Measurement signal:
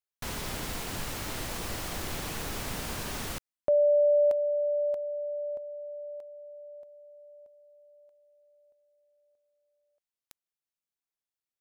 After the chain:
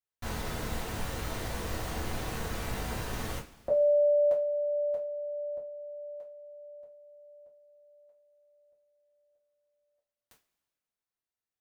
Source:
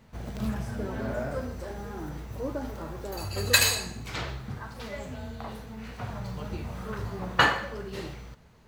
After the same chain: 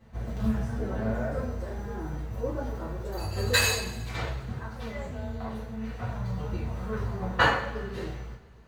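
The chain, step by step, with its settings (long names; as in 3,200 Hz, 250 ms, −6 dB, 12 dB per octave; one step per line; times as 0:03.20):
high-shelf EQ 3,100 Hz −6.5 dB
coupled-rooms reverb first 0.25 s, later 1.8 s, from −22 dB, DRR −6.5 dB
level −6.5 dB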